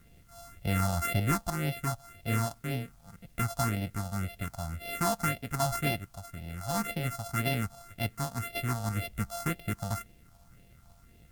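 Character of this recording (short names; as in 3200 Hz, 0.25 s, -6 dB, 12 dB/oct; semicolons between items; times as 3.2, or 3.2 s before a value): a buzz of ramps at a fixed pitch in blocks of 64 samples; phasing stages 4, 1.9 Hz, lowest notch 370–1200 Hz; a quantiser's noise floor 12-bit, dither triangular; MP3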